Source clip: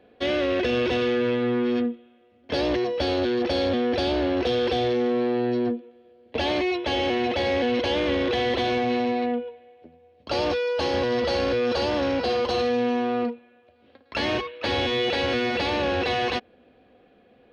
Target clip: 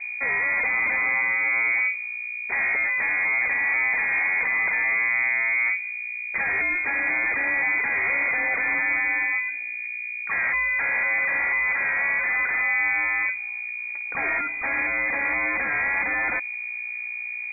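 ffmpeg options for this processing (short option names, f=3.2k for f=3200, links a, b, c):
-filter_complex "[0:a]equalizer=f=110:t=o:w=2.7:g=-8.5,aeval=exprs='val(0)+0.0126*(sin(2*PI*60*n/s)+sin(2*PI*2*60*n/s)/2+sin(2*PI*3*60*n/s)/3+sin(2*PI*4*60*n/s)/4+sin(2*PI*5*60*n/s)/5)':c=same,acrossover=split=220[a][b];[b]asoftclip=type=tanh:threshold=-29dB[c];[a][c]amix=inputs=2:normalize=0,lowpass=f=2.1k:t=q:w=0.5098,lowpass=f=2.1k:t=q:w=0.6013,lowpass=f=2.1k:t=q:w=0.9,lowpass=f=2.1k:t=q:w=2.563,afreqshift=-2500,volume=7dB"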